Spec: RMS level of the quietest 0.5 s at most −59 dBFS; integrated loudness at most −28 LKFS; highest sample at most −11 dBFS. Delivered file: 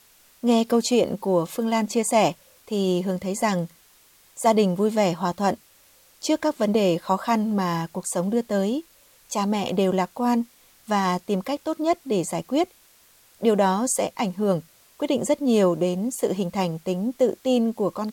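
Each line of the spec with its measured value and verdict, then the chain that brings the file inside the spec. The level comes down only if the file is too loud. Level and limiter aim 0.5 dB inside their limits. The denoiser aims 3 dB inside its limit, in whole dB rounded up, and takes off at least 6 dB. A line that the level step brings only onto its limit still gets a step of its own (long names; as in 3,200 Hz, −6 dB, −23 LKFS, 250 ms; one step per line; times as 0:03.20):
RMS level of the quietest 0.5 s −56 dBFS: out of spec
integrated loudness −23.5 LKFS: out of spec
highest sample −8.0 dBFS: out of spec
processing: level −5 dB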